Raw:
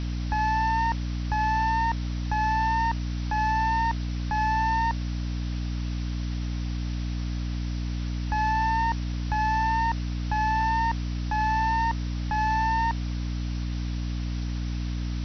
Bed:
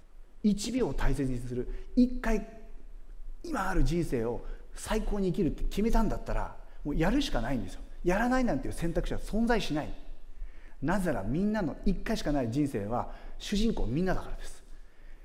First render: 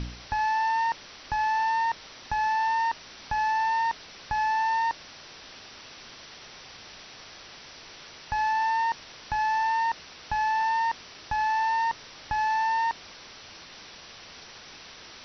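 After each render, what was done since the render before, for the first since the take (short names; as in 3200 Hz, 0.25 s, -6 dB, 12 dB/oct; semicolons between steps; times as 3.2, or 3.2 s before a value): de-hum 60 Hz, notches 5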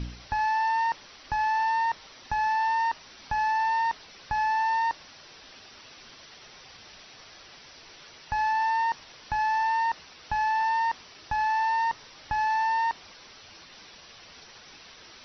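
denoiser 6 dB, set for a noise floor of -47 dBFS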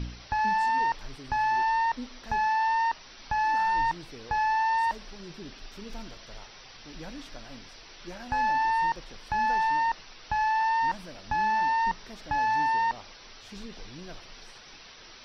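add bed -15 dB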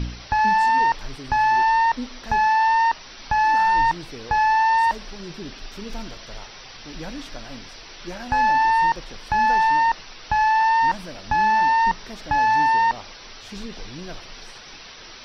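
gain +7.5 dB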